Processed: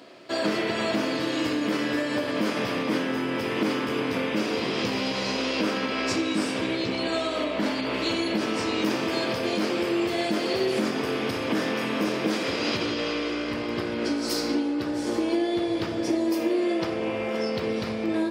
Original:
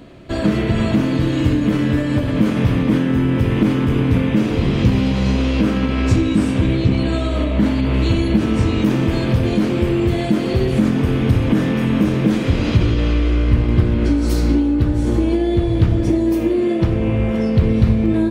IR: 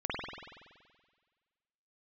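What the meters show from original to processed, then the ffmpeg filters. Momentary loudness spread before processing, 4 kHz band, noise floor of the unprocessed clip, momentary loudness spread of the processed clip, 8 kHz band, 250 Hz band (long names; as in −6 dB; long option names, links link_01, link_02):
2 LU, +1.0 dB, −20 dBFS, 3 LU, can't be measured, −10.5 dB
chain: -filter_complex "[0:a]highpass=430,equalizer=frequency=5000:width=3.9:gain=10,asplit=2[link_01][link_02];[1:a]atrim=start_sample=2205[link_03];[link_02][link_03]afir=irnorm=-1:irlink=0,volume=-17dB[link_04];[link_01][link_04]amix=inputs=2:normalize=0,volume=-2.5dB"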